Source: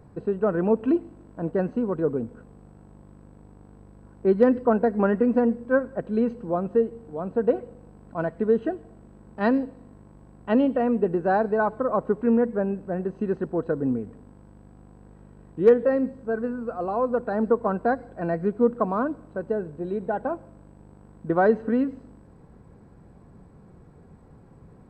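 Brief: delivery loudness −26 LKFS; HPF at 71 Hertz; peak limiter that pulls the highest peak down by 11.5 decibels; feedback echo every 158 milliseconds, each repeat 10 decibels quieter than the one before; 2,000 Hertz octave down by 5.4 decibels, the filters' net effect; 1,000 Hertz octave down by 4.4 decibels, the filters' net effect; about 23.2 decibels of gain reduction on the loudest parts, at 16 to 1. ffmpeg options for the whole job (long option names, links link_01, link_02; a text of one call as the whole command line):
ffmpeg -i in.wav -af "highpass=71,equalizer=frequency=1000:width_type=o:gain=-5.5,equalizer=frequency=2000:width_type=o:gain=-5,acompressor=threshold=-35dB:ratio=16,alimiter=level_in=11dB:limit=-24dB:level=0:latency=1,volume=-11dB,aecho=1:1:158|316|474|632:0.316|0.101|0.0324|0.0104,volume=19dB" out.wav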